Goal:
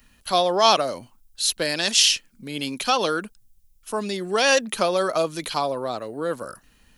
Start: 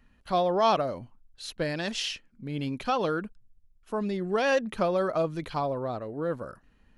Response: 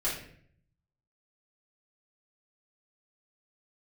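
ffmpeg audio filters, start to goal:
-filter_complex "[0:a]equalizer=f=1.9k:w=1.5:g=-2.5,acrossover=split=190|2100[a][b][c];[a]acompressor=threshold=-52dB:ratio=6[d];[d][b][c]amix=inputs=3:normalize=0,crystalizer=i=7:c=0,volume=3dB"

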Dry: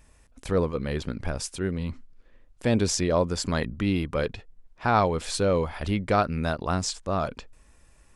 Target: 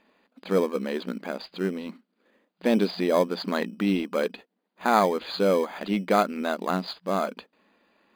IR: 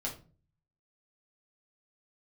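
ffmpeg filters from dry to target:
-filter_complex "[0:a]afftfilt=real='re*between(b*sr/4096,180,4900)':imag='im*between(b*sr/4096,180,4900)':win_size=4096:overlap=0.75,asplit=2[a][b];[b]acrusher=samples=16:mix=1:aa=0.000001,volume=-11dB[c];[a][c]amix=inputs=2:normalize=0"

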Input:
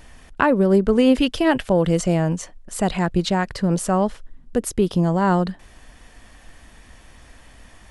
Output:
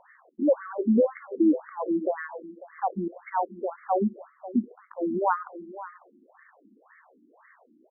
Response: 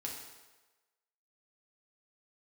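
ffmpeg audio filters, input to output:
-filter_complex "[0:a]asplit=2[a][b];[b]adelay=548.1,volume=-15dB,highshelf=f=4k:g=-12.3[c];[a][c]amix=inputs=2:normalize=0,asplit=2[d][e];[1:a]atrim=start_sample=2205,asetrate=33957,aresample=44100[f];[e][f]afir=irnorm=-1:irlink=0,volume=-19dB[g];[d][g]amix=inputs=2:normalize=0,afftfilt=real='re*between(b*sr/1024,250*pow(1600/250,0.5+0.5*sin(2*PI*1.9*pts/sr))/1.41,250*pow(1600/250,0.5+0.5*sin(2*PI*1.9*pts/sr))*1.41)':imag='im*between(b*sr/1024,250*pow(1600/250,0.5+0.5*sin(2*PI*1.9*pts/sr))/1.41,250*pow(1600/250,0.5+0.5*sin(2*PI*1.9*pts/sr))*1.41)':win_size=1024:overlap=0.75"

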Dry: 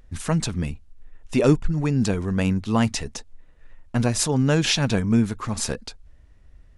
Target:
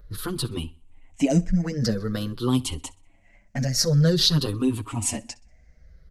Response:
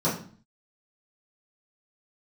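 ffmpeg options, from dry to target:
-filter_complex "[0:a]afftfilt=real='re*pow(10,15/40*sin(2*PI*(0.61*log(max(b,1)*sr/1024/100)/log(2)-(-0.44)*(pts-256)/sr)))':imag='im*pow(10,15/40*sin(2*PI*(0.61*log(max(b,1)*sr/1024/100)/log(2)-(-0.44)*(pts-256)/sr)))':win_size=1024:overlap=0.75,adynamicequalizer=threshold=0.01:dfrequency=4300:dqfactor=2.8:tfrequency=4300:tqfactor=2.8:attack=5:release=100:ratio=0.375:range=3.5:mode=boostabove:tftype=bell,acrossover=split=380|3000[a][b][c];[b]acompressor=threshold=-32dB:ratio=3[d];[a][d][c]amix=inputs=3:normalize=0,asetrate=48951,aresample=44100,aecho=1:1:63|126|189:0.0708|0.0276|0.0108,asplit=2[e][f];[f]adelay=6.7,afreqshift=0.59[g];[e][g]amix=inputs=2:normalize=1"

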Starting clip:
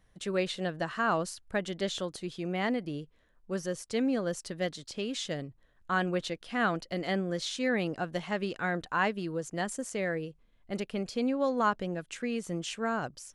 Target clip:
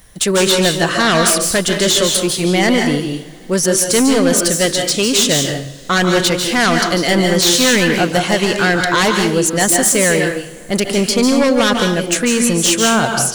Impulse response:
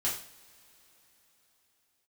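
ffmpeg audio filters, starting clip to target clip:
-filter_complex "[0:a]aemphasis=mode=production:type=75fm,aeval=exprs='0.224*sin(PI/2*3.98*val(0)/0.224)':c=same,asplit=2[a][b];[1:a]atrim=start_sample=2205,adelay=142[c];[b][c]afir=irnorm=-1:irlink=0,volume=-8.5dB[d];[a][d]amix=inputs=2:normalize=0,volume=3.5dB"

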